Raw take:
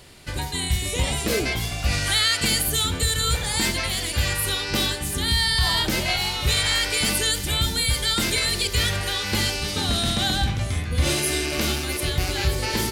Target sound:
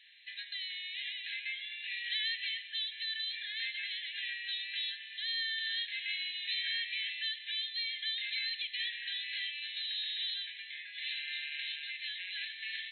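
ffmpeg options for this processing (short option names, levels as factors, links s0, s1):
-af "afftfilt=real='re*between(b*sr/4096,1600,4200)':imag='im*between(b*sr/4096,1600,4200)':win_size=4096:overlap=0.75,acompressor=threshold=0.0158:ratio=1.5,volume=0.501"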